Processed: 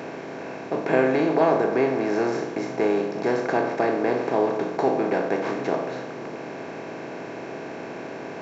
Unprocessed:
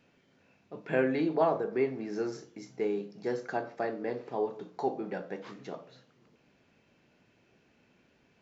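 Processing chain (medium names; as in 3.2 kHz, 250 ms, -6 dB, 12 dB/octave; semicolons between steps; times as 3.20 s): spectral levelling over time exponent 0.4; trim +3.5 dB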